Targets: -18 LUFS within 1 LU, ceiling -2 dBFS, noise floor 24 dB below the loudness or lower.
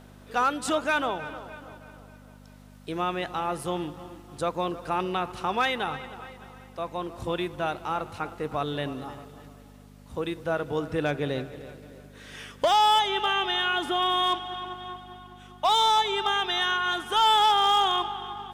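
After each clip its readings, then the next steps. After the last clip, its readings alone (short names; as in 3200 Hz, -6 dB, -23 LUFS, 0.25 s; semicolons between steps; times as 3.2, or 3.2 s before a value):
clipped 0.7%; flat tops at -16.5 dBFS; hum 50 Hz; harmonics up to 250 Hz; hum level -48 dBFS; loudness -26.0 LUFS; peak -16.5 dBFS; loudness target -18.0 LUFS
-> clip repair -16.5 dBFS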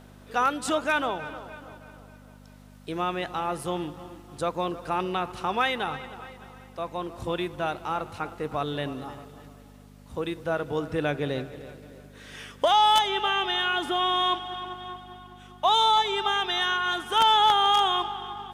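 clipped 0.0%; hum 50 Hz; harmonics up to 250 Hz; hum level -48 dBFS
-> de-hum 50 Hz, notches 5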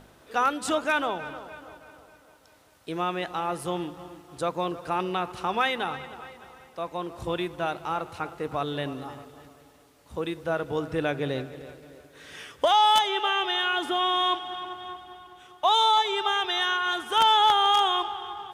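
hum none; loudness -25.5 LUFS; peak -7.5 dBFS; loudness target -18.0 LUFS
-> gain +7.5 dB; limiter -2 dBFS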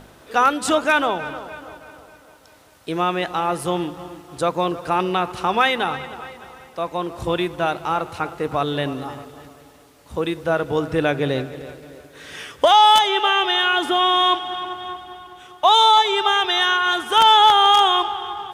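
loudness -18.0 LUFS; peak -2.0 dBFS; noise floor -49 dBFS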